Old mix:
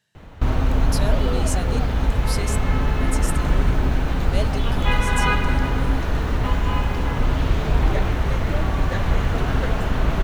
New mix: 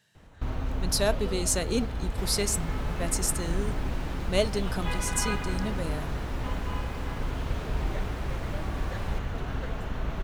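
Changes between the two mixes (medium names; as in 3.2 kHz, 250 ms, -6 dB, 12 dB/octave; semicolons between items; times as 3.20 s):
speech +4.0 dB; first sound -11.5 dB; second sound: entry -1.10 s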